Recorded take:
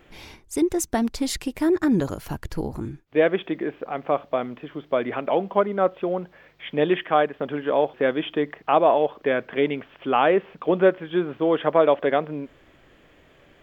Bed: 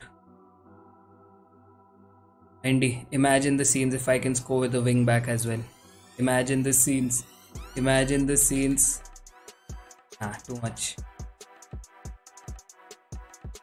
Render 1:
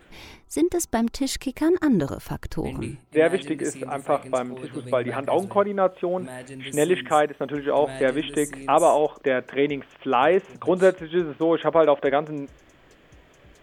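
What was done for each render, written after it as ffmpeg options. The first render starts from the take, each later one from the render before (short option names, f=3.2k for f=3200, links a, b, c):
-filter_complex "[1:a]volume=-14dB[a];[0:a][a]amix=inputs=2:normalize=0"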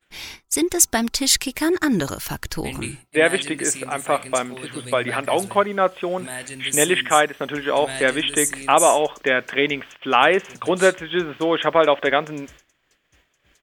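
-af "agate=range=-33dB:threshold=-41dB:ratio=3:detection=peak,firequalizer=gain_entry='entry(470,0);entry(1600,9);entry(5200,14)':delay=0.05:min_phase=1"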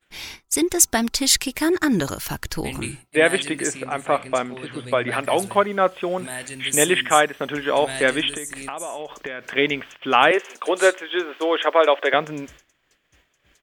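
-filter_complex "[0:a]asettb=1/sr,asplit=3[a][b][c];[a]atrim=end=3.674[d];[b]atrim=start=3.67:end=5.12,asetpts=PTS-STARTPTS,afade=t=in:d=0.004:c=qsin,afade=t=out:st=1.446:d=0.004:c=qsin,aemphasis=mode=reproduction:type=50fm[e];[c]atrim=start=5.116[f];[d][e]acrossfade=d=0.004:c1=hsin:c2=qsin[g];[g][f]acrossfade=d=0.004:c1=qsin:c2=hsin,asettb=1/sr,asplit=3[h][i][j];[h]atrim=end=8.294[k];[i]atrim=start=8.29:end=9.56,asetpts=PTS-STARTPTS,afade=t=in:d=0.004:c=qsin,afade=t=out:st=1.266:d=0.004:c=qsin,acompressor=threshold=-26dB:ratio=20:attack=3.2:release=140:knee=1:detection=peak[l];[j]atrim=start=9.556[m];[k][l]acrossfade=d=0.004:c1=hsin:c2=qsin[n];[n][m]acrossfade=d=0.004:c1=qsin:c2=hsin,asettb=1/sr,asplit=3[o][p][q];[o]atrim=end=10.314[r];[p]atrim=start=10.31:end=12.14,asetpts=PTS-STARTPTS,afade=t=in:d=0.004:c=qsin,afade=t=out:st=1.826:d=0.004:c=qsin,highpass=f=340:w=0.5412,highpass=f=340:w=1.3066[s];[q]atrim=start=12.136[t];[r][s]acrossfade=d=0.004:c1=hsin:c2=qsin[u];[u][t]acrossfade=d=0.004:c1=qsin:c2=hsin"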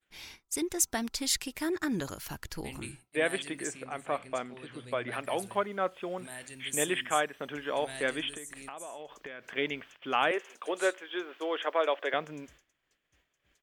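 -af "volume=-12dB"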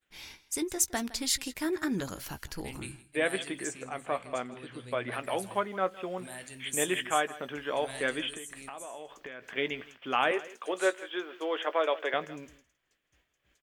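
-filter_complex "[0:a]asplit=2[a][b];[b]adelay=16,volume=-12.5dB[c];[a][c]amix=inputs=2:normalize=0,aecho=1:1:162:0.119"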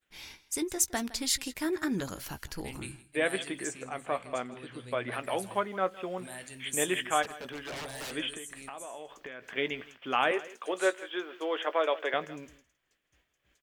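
-filter_complex "[0:a]asplit=3[a][b][c];[a]afade=t=out:st=7.22:d=0.02[d];[b]aeval=exprs='0.02*(abs(mod(val(0)/0.02+3,4)-2)-1)':c=same,afade=t=in:st=7.22:d=0.02,afade=t=out:st=8.11:d=0.02[e];[c]afade=t=in:st=8.11:d=0.02[f];[d][e][f]amix=inputs=3:normalize=0"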